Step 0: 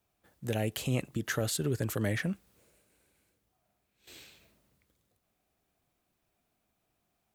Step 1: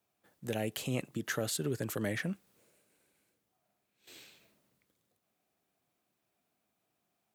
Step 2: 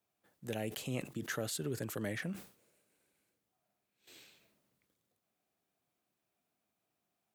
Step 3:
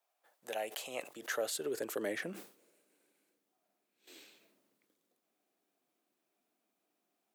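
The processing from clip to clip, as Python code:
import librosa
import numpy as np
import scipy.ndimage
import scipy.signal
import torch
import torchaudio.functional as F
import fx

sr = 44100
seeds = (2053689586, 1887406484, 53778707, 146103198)

y1 = scipy.signal.sosfilt(scipy.signal.butter(2, 140.0, 'highpass', fs=sr, output='sos'), x)
y1 = y1 * librosa.db_to_amplitude(-2.0)
y2 = fx.sustainer(y1, sr, db_per_s=140.0)
y2 = y2 * librosa.db_to_amplitude(-4.0)
y3 = fx.filter_sweep_highpass(y2, sr, from_hz=680.0, to_hz=290.0, start_s=0.89, end_s=2.65, q=1.7)
y3 = y3 * librosa.db_to_amplitude(1.0)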